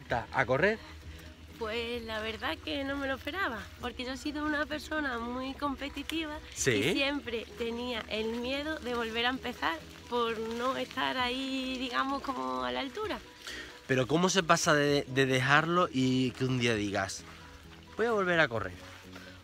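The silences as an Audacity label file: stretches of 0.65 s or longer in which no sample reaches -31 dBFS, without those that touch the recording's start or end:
0.750000	1.610000	silence
17.160000	17.990000	silence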